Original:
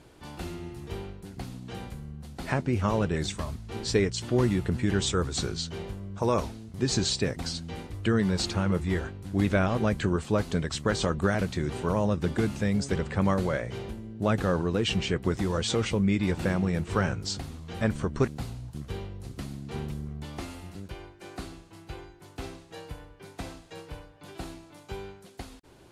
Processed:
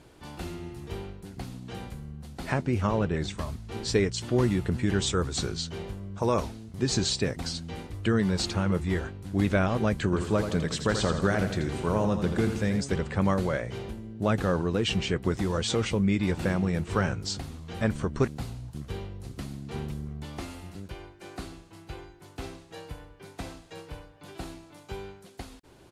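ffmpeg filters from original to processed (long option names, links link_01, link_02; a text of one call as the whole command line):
ffmpeg -i in.wav -filter_complex "[0:a]asettb=1/sr,asplit=3[link_01][link_02][link_03];[link_01]atrim=end=2.874[link_04];[link_02]atrim=start=2.87:end=3.38,asetpts=PTS-STARTPTS,afade=type=in:duration=0.004:curve=qsin,afade=type=out:start_time=0.506:duration=0.004:curve=qsin,lowpass=frequency=3400:poles=1[link_05];[link_03]atrim=start=3.376[link_06];[link_04][link_05]acrossfade=duration=0.004:curve1=hsin:curve2=qsin[link_07];[link_07][link_06]acrossfade=duration=0.004:curve1=qsin:curve2=hsin,asplit=3[link_08][link_09][link_10];[link_08]afade=type=out:start_time=10.12:duration=0.02[link_11];[link_09]aecho=1:1:83|166|249|332|415|498:0.398|0.207|0.108|0.056|0.0291|0.0151,afade=type=in:start_time=10.12:duration=0.02,afade=type=out:start_time=12.8:duration=0.02[link_12];[link_10]afade=type=in:start_time=12.8:duration=0.02[link_13];[link_11][link_12][link_13]amix=inputs=3:normalize=0" out.wav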